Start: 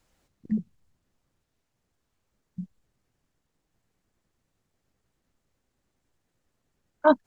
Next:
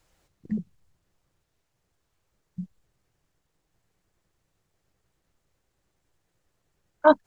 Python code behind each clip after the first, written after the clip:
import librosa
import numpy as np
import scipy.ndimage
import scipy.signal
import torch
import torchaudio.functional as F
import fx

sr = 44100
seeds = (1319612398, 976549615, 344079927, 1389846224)

y = fx.peak_eq(x, sr, hz=240.0, db=-11.0, octaves=0.28)
y = y * 10.0 ** (2.5 / 20.0)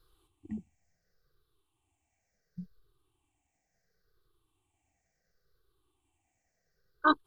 y = fx.spec_ripple(x, sr, per_octave=0.61, drift_hz=-0.71, depth_db=20)
y = y + 0.5 * np.pad(y, (int(2.6 * sr / 1000.0), 0))[:len(y)]
y = y * 10.0 ** (-8.5 / 20.0)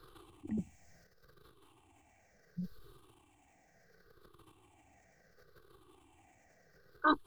y = fx.transient(x, sr, attack_db=-3, sustain_db=12)
y = fx.band_squash(y, sr, depth_pct=40)
y = y * 10.0 ** (3.5 / 20.0)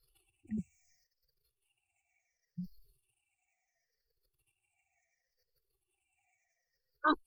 y = fx.bin_expand(x, sr, power=2.0)
y = y * 10.0 ** (1.0 / 20.0)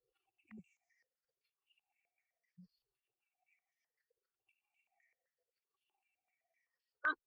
y = fx.rotary_switch(x, sr, hz=6.7, then_hz=1.1, switch_at_s=4.19)
y = fx.filter_held_bandpass(y, sr, hz=7.8, low_hz=530.0, high_hz=3000.0)
y = y * 10.0 ** (9.5 / 20.0)